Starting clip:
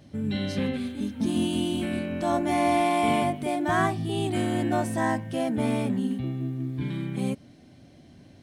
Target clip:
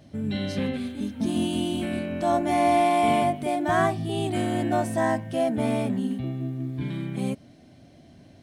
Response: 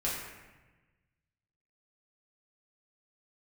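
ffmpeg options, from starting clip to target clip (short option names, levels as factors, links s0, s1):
-af "equalizer=f=660:w=7.5:g=7"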